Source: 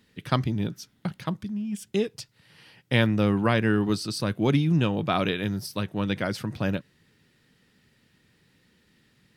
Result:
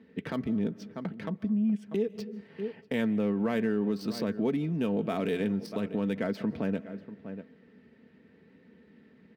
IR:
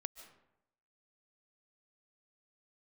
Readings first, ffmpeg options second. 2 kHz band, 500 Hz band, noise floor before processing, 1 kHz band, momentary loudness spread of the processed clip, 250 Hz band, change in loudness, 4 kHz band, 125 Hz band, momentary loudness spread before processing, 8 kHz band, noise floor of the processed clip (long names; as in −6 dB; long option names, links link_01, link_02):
−9.5 dB, −2.5 dB, −65 dBFS, −9.5 dB, 12 LU, −2.0 dB, −4.5 dB, −12.5 dB, −10.0 dB, 11 LU, below −10 dB, −60 dBFS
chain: -filter_complex "[0:a]adynamicsmooth=sensitivity=5:basefreq=2500,asplit=2[link_01][link_02];[link_02]adelay=641.4,volume=-21dB,highshelf=frequency=4000:gain=-14.4[link_03];[link_01][link_03]amix=inputs=2:normalize=0,crystalizer=i=4.5:c=0,highpass=frequency=77:width=0.5412,highpass=frequency=77:width=1.3066,tiltshelf=frequency=1100:gain=9.5,aecho=1:1:4.5:0.48,asplit=2[link_04][link_05];[1:a]atrim=start_sample=2205[link_06];[link_05][link_06]afir=irnorm=-1:irlink=0,volume=-10dB[link_07];[link_04][link_07]amix=inputs=2:normalize=0,acompressor=threshold=-23dB:ratio=2.5,alimiter=limit=-19dB:level=0:latency=1:release=84,equalizer=frequency=125:width_type=o:width=1:gain=-8,equalizer=frequency=250:width_type=o:width=1:gain=4,equalizer=frequency=500:width_type=o:width=1:gain=6,equalizer=frequency=2000:width_type=o:width=1:gain=7,equalizer=frequency=8000:width_type=o:width=1:gain=-4,volume=-5dB"